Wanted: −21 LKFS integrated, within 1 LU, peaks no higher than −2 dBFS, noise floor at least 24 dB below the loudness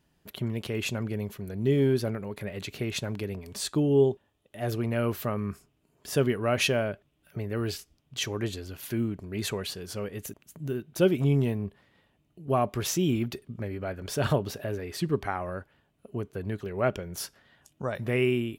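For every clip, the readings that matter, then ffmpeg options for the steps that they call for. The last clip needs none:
integrated loudness −30.0 LKFS; sample peak −11.5 dBFS; target loudness −21.0 LKFS
→ -af "volume=9dB"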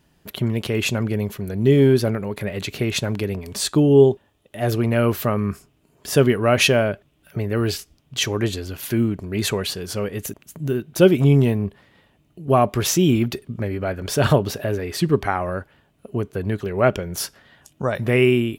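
integrated loudness −21.0 LKFS; sample peak −2.5 dBFS; background noise floor −62 dBFS

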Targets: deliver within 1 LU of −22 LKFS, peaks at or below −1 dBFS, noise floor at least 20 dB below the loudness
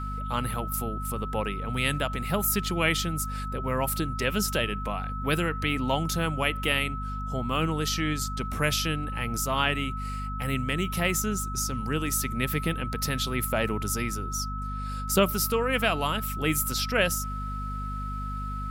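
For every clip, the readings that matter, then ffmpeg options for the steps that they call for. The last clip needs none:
mains hum 50 Hz; hum harmonics up to 250 Hz; level of the hum −31 dBFS; interfering tone 1,300 Hz; level of the tone −35 dBFS; integrated loudness −28.0 LKFS; sample peak −8.5 dBFS; target loudness −22.0 LKFS
→ -af "bandreject=frequency=50:width_type=h:width=4,bandreject=frequency=100:width_type=h:width=4,bandreject=frequency=150:width_type=h:width=4,bandreject=frequency=200:width_type=h:width=4,bandreject=frequency=250:width_type=h:width=4"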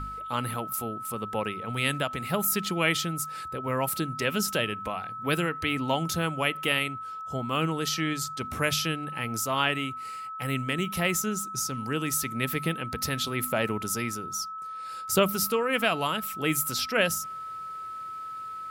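mains hum none found; interfering tone 1,300 Hz; level of the tone −35 dBFS
→ -af "bandreject=frequency=1300:width=30"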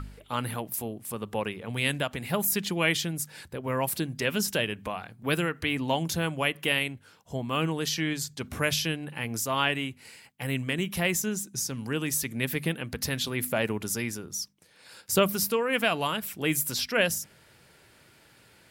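interfering tone none found; integrated loudness −29.0 LKFS; sample peak −10.0 dBFS; target loudness −22.0 LKFS
→ -af "volume=7dB"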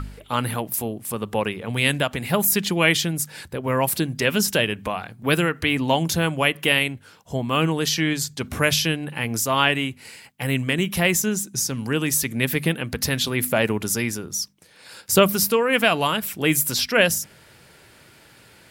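integrated loudness −22.0 LKFS; sample peak −3.0 dBFS; background noise floor −51 dBFS

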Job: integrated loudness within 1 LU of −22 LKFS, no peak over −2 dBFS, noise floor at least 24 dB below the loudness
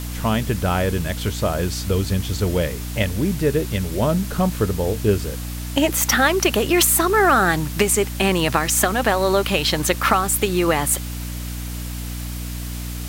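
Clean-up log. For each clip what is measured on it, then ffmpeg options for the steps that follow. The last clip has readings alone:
mains hum 60 Hz; hum harmonics up to 300 Hz; level of the hum −26 dBFS; background noise floor −29 dBFS; target noise floor −44 dBFS; integrated loudness −20.0 LKFS; sample peak −1.0 dBFS; target loudness −22.0 LKFS
→ -af "bandreject=frequency=60:width_type=h:width=6,bandreject=frequency=120:width_type=h:width=6,bandreject=frequency=180:width_type=h:width=6,bandreject=frequency=240:width_type=h:width=6,bandreject=frequency=300:width_type=h:width=6"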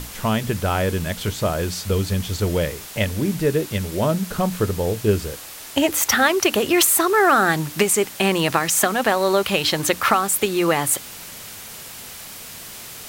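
mains hum none found; background noise floor −37 dBFS; target noise floor −44 dBFS
→ -af "afftdn=noise_reduction=7:noise_floor=-37"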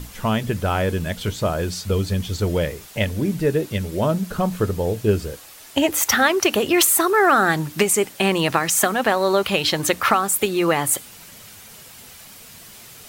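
background noise floor −43 dBFS; target noise floor −44 dBFS
→ -af "afftdn=noise_reduction=6:noise_floor=-43"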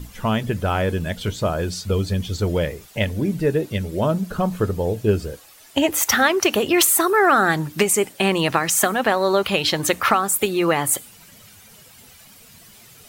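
background noise floor −48 dBFS; integrated loudness −20.0 LKFS; sample peak −1.5 dBFS; target loudness −22.0 LKFS
→ -af "volume=-2dB"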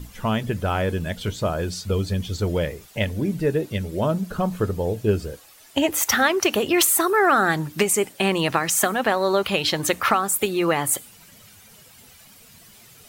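integrated loudness −22.0 LKFS; sample peak −3.5 dBFS; background noise floor −50 dBFS

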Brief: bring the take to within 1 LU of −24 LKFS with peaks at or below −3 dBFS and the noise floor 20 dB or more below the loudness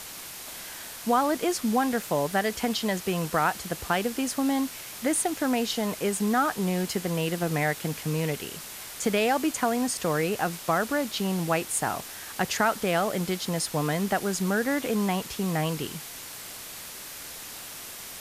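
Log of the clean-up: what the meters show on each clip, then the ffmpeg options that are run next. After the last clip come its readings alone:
background noise floor −41 dBFS; target noise floor −48 dBFS; integrated loudness −28.0 LKFS; sample peak −10.5 dBFS; target loudness −24.0 LKFS
→ -af "afftdn=noise_reduction=7:noise_floor=-41"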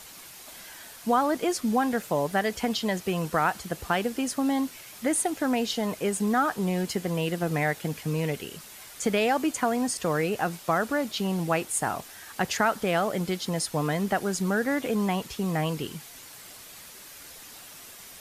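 background noise floor −46 dBFS; target noise floor −48 dBFS
→ -af "afftdn=noise_reduction=6:noise_floor=-46"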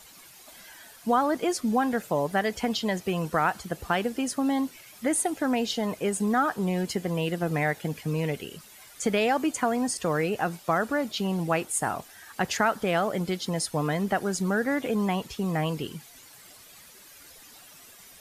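background noise floor −51 dBFS; integrated loudness −27.5 LKFS; sample peak −11.0 dBFS; target loudness −24.0 LKFS
→ -af "volume=3.5dB"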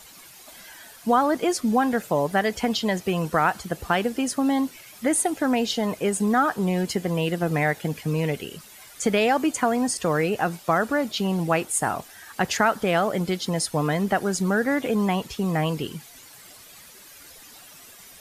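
integrated loudness −24.0 LKFS; sample peak −7.5 dBFS; background noise floor −47 dBFS

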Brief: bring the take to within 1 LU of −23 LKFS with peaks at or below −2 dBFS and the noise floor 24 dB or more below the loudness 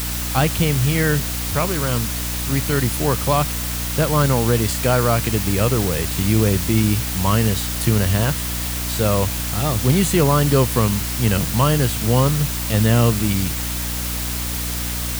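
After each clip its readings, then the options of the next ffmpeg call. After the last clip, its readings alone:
mains hum 60 Hz; hum harmonics up to 300 Hz; level of the hum −25 dBFS; background noise floor −25 dBFS; target noise floor −43 dBFS; integrated loudness −19.0 LKFS; sample peak −4.0 dBFS; target loudness −23.0 LKFS
→ -af "bandreject=frequency=60:width_type=h:width=4,bandreject=frequency=120:width_type=h:width=4,bandreject=frequency=180:width_type=h:width=4,bandreject=frequency=240:width_type=h:width=4,bandreject=frequency=300:width_type=h:width=4"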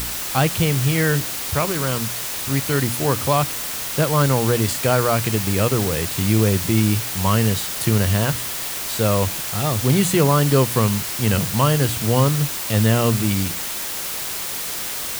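mains hum none found; background noise floor −28 dBFS; target noise floor −44 dBFS
→ -af "afftdn=noise_reduction=16:noise_floor=-28"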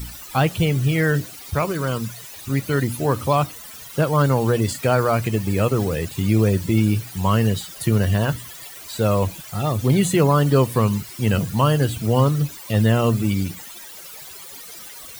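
background noise floor −39 dBFS; target noise floor −45 dBFS
→ -af "afftdn=noise_reduction=6:noise_floor=-39"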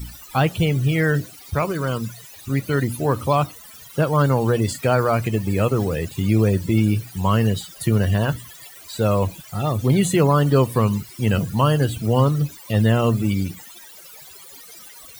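background noise floor −43 dBFS; target noise floor −45 dBFS
→ -af "afftdn=noise_reduction=6:noise_floor=-43"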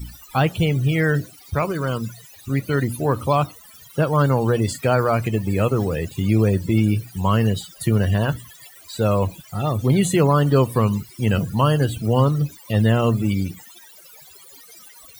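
background noise floor −46 dBFS; integrated loudness −20.5 LKFS; sample peak −6.0 dBFS; target loudness −23.0 LKFS
→ -af "volume=-2.5dB"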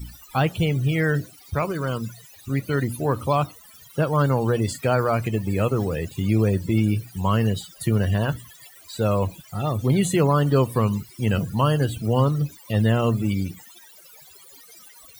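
integrated loudness −23.0 LKFS; sample peak −8.5 dBFS; background noise floor −49 dBFS

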